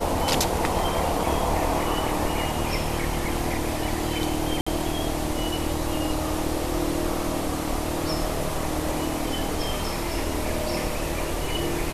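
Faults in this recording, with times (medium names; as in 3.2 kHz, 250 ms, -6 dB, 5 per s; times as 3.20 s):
4.61–4.67 s: dropout 55 ms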